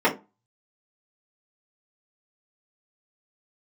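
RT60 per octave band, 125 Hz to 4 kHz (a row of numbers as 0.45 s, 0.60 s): 0.35 s, 0.30 s, 0.25 s, 0.30 s, 0.20 s, 0.15 s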